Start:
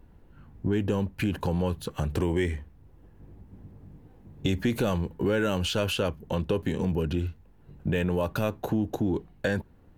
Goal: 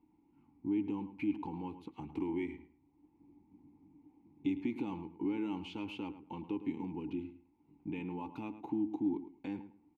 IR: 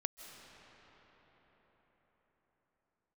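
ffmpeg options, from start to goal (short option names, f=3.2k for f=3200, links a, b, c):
-filter_complex "[0:a]asplit=3[a][b][c];[a]bandpass=f=300:t=q:w=8,volume=0dB[d];[b]bandpass=f=870:t=q:w=8,volume=-6dB[e];[c]bandpass=f=2.24k:t=q:w=8,volume=-9dB[f];[d][e][f]amix=inputs=3:normalize=0,equalizer=f=410:t=o:w=0.27:g=-3,asplit=2[g][h];[h]adelay=107,lowpass=f=2.7k:p=1,volume=-12dB,asplit=2[i][j];[j]adelay=107,lowpass=f=2.7k:p=1,volume=0.21,asplit=2[k][l];[l]adelay=107,lowpass=f=2.7k:p=1,volume=0.21[m];[g][i][k][m]amix=inputs=4:normalize=0,volume=1dB"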